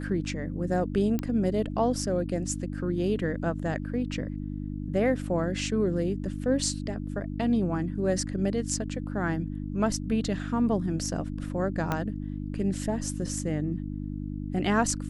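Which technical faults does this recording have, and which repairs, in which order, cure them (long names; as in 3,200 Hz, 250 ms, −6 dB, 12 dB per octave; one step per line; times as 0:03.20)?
mains hum 50 Hz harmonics 6 −34 dBFS
0:01.19: click −17 dBFS
0:11.92: click −14 dBFS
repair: click removal
hum removal 50 Hz, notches 6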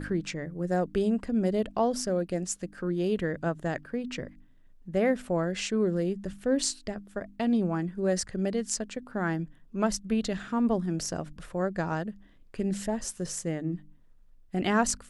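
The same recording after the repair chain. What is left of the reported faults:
0:11.92: click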